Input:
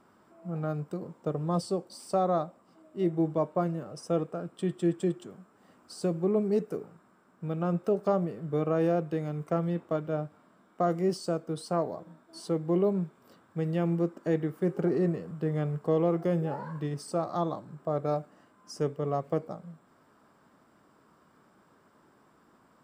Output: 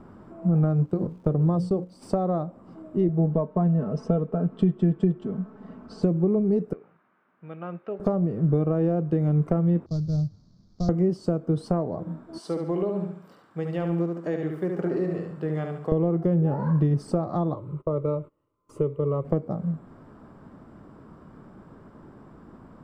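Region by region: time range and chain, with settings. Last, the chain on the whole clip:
0.69–2.01 s: hum notches 60/120/180/240/300/360/420/480/540 Hz + gate -42 dBFS, range -10 dB + crackle 390 per s -57 dBFS
3.08–6.03 s: distance through air 120 m + comb 4.6 ms, depth 66%
6.73–8.00 s: band-pass filter 2.4 kHz, Q 1.6 + distance through air 210 m
9.86–10.89 s: CVSD coder 32 kbps + FFT filter 110 Hz 0 dB, 170 Hz -8 dB, 280 Hz -19 dB, 1.8 kHz -25 dB, 2.8 kHz -25 dB, 4.5 kHz +5 dB, 10 kHz -1 dB
12.38–15.92 s: high-pass 1.5 kHz 6 dB/octave + feedback delay 71 ms, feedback 40%, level -5 dB
17.54–19.25 s: gate -54 dBFS, range -24 dB + static phaser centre 1.1 kHz, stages 8
whole clip: compression 4:1, threshold -37 dBFS; tilt EQ -4 dB/octave; trim +8.5 dB

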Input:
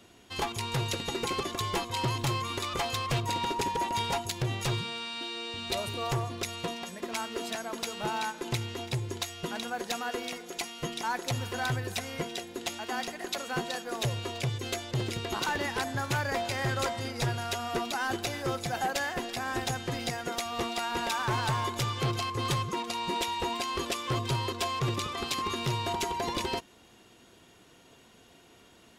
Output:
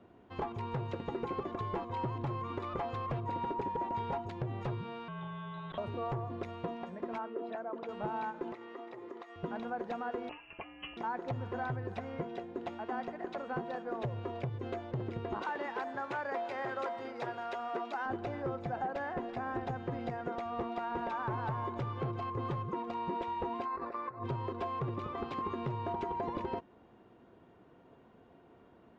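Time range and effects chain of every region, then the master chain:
5.08–5.78 s: frequency inversion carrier 3.9 kHz + transformer saturation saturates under 650 Hz
7.18–7.89 s: resonances exaggerated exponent 1.5 + high-pass 310 Hz 6 dB/octave + distance through air 140 m
8.52–9.36 s: high-pass 280 Hz 24 dB/octave + compression 3:1, threshold -41 dBFS + small resonant body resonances 1.2/1.9 kHz, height 13 dB, ringing for 40 ms
10.29–10.97 s: tilt shelf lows +6 dB, about 1.1 kHz + frequency inversion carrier 3.1 kHz
15.41–18.06 s: high-pass 270 Hz + tilt EQ +2 dB/octave
23.65–24.24 s: compressor with a negative ratio -34 dBFS, ratio -0.5 + boxcar filter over 14 samples + tilt shelf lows -9 dB, about 730 Hz
whole clip: low-pass 1.1 kHz 12 dB/octave; compression, threshold -32 dBFS; bass shelf 63 Hz -7 dB

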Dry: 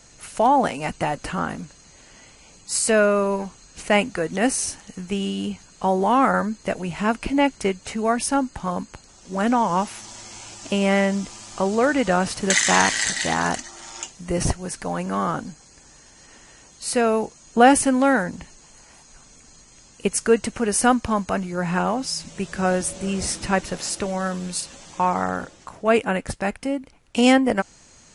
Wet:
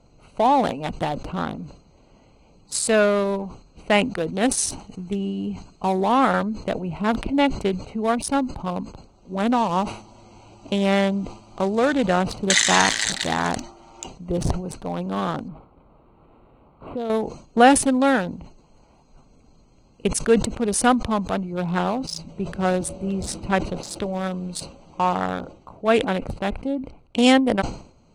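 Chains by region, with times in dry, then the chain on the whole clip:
4.57–6.01 s: treble shelf 5.5 kHz +6 dB + band-stop 530 Hz, Q 6.5
15.48–17.10 s: low-pass 6.8 kHz 24 dB/octave + compression 2.5:1, threshold -26 dBFS + decimation joined by straight lines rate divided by 8×
whole clip: local Wiener filter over 25 samples; peaking EQ 3.7 kHz +8 dB 0.51 oct; decay stretcher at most 110 dB/s

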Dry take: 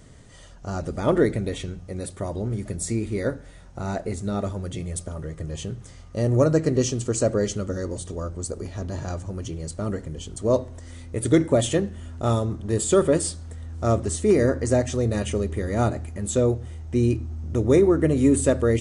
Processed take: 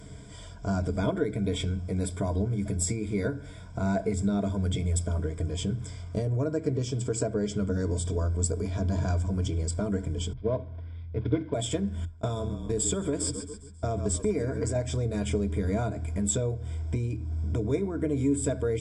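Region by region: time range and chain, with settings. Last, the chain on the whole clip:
6.25–7.80 s: high-pass 40 Hz + treble shelf 5.5 kHz -5 dB
10.33–11.54 s: CVSD coder 32 kbps + distance through air 420 m + three bands expanded up and down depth 70%
12.05–14.76 s: gate -29 dBFS, range -20 dB + frequency-shifting echo 135 ms, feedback 44%, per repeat -36 Hz, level -16 dB + compression 2.5:1, threshold -24 dBFS
whole clip: peaking EQ 130 Hz +3 dB 2.1 oct; compression 6:1, threshold -27 dBFS; rippled EQ curve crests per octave 1.7, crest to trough 14 dB

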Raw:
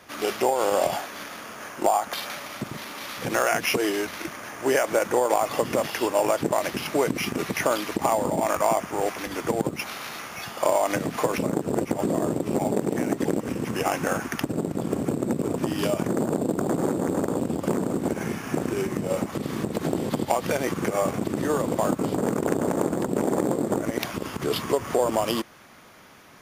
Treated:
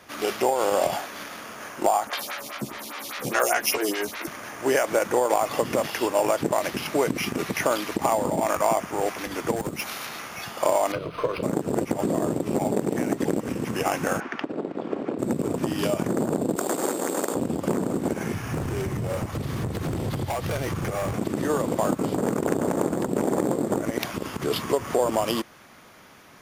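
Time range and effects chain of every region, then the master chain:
2.07–4.27 s: treble shelf 2.2 kHz +7 dB + doubling 14 ms -5 dB + lamp-driven phase shifter 4.9 Hz
9.56–10.06 s: treble shelf 6 kHz +6 dB + hard clipper -23.5 dBFS
10.92–11.43 s: tone controls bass +1 dB, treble +4 dB + static phaser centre 1.2 kHz, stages 8 + decimation joined by straight lines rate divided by 6×
14.20–15.19 s: low-pass 7.8 kHz + three-band isolator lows -20 dB, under 240 Hz, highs -24 dB, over 4 kHz
16.56–17.35 s: high-pass 340 Hz + treble shelf 2 kHz +10.5 dB
18.34–21.15 s: resonant low shelf 150 Hz +10.5 dB, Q 1.5 + band-stop 7.4 kHz, Q 22 + overload inside the chain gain 24 dB
whole clip: none

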